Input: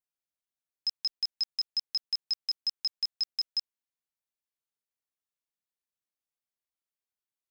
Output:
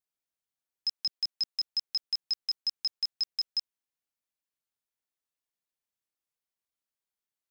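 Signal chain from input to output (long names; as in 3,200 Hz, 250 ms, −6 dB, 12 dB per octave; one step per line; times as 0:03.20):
0:00.95–0:01.60: high-pass filter 170 Hz → 370 Hz 12 dB per octave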